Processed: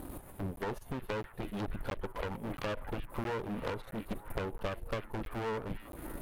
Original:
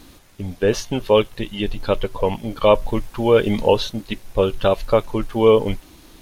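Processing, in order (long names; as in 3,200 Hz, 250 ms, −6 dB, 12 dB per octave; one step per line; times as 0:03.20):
drawn EQ curve 860 Hz 0 dB, 5,700 Hz −24 dB, 9,900 Hz −2 dB
downward compressor 12 to 1, threshold −34 dBFS, peak gain reduction 25 dB
harmonic generator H 6 −11 dB, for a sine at −22.5 dBFS
asymmetric clip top −41 dBFS
echo through a band-pass that steps 308 ms, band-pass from 2,700 Hz, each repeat −0.7 octaves, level −8.5 dB
regular buffer underruns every 0.67 s, samples 512, zero, from 0:00.56
level +4.5 dB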